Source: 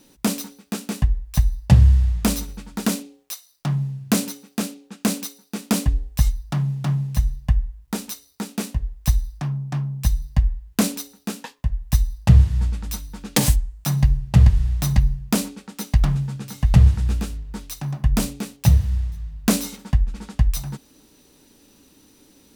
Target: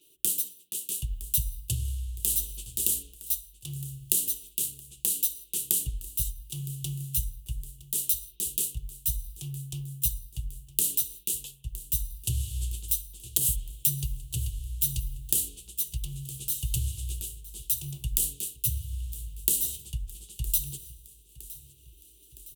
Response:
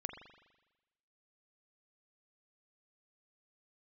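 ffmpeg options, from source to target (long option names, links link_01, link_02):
-filter_complex "[0:a]agate=range=-33dB:threshold=-44dB:ratio=3:detection=peak,asplit=2[link_01][link_02];[1:a]atrim=start_sample=2205[link_03];[link_02][link_03]afir=irnorm=-1:irlink=0,volume=-10dB[link_04];[link_01][link_04]amix=inputs=2:normalize=0,tremolo=f=0.72:d=0.62,acrossover=split=160|2800[link_05][link_06][link_07];[link_06]acompressor=mode=upward:threshold=-43dB:ratio=2.5[link_08];[link_05][link_08][link_07]amix=inputs=3:normalize=0,highshelf=frequency=12000:gain=-4,bandreject=frequency=92.92:width_type=h:width=4,bandreject=frequency=185.84:width_type=h:width=4,bandreject=frequency=278.76:width_type=h:width=4,bandreject=frequency=371.68:width_type=h:width=4,bandreject=frequency=464.6:width_type=h:width=4,bandreject=frequency=557.52:width_type=h:width=4,bandreject=frequency=650.44:width_type=h:width=4,acrossover=split=600|4500[link_09][link_10][link_11];[link_09]acompressor=threshold=-20dB:ratio=4[link_12];[link_10]acompressor=threshold=-38dB:ratio=4[link_13];[link_11]acompressor=threshold=-36dB:ratio=4[link_14];[link_12][link_13][link_14]amix=inputs=3:normalize=0,firequalizer=gain_entry='entry(120,0);entry(240,-24);entry(350,0);entry(630,-20);entry(1800,-27);entry(2900,12);entry(6400,2)':delay=0.05:min_phase=1,aecho=1:1:963|1926|2889|3852|4815:0.119|0.0701|0.0414|0.0244|0.0144,aexciter=amount=9.7:drive=5.2:freq=7200,volume=-8dB"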